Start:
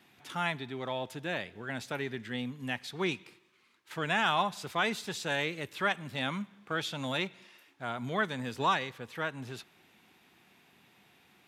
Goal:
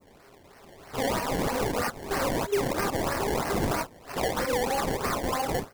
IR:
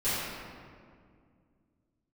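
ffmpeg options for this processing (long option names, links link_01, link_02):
-filter_complex "[0:a]areverse,asplit=2[link_01][link_02];[link_02]acompressor=threshold=-41dB:ratio=6,volume=-2dB[link_03];[link_01][link_03]amix=inputs=2:normalize=0,highpass=200,asplit=2[link_04][link_05];[link_05]adelay=15,volume=-6.5dB[link_06];[link_04][link_06]amix=inputs=2:normalize=0,asetrate=88200,aresample=44100,dynaudnorm=framelen=130:gausssize=13:maxgain=11.5dB[link_07];[1:a]atrim=start_sample=2205,atrim=end_sample=3528[link_08];[link_07][link_08]afir=irnorm=-1:irlink=0,alimiter=limit=-14dB:level=0:latency=1:release=87,acrusher=samples=24:mix=1:aa=0.000001:lfo=1:lforange=24:lforate=3.1,adynamicequalizer=threshold=0.00794:dfrequency=3100:dqfactor=1.2:tfrequency=3100:tqfactor=1.2:attack=5:release=100:ratio=0.375:range=2.5:mode=cutabove:tftype=bell,volume=-4dB"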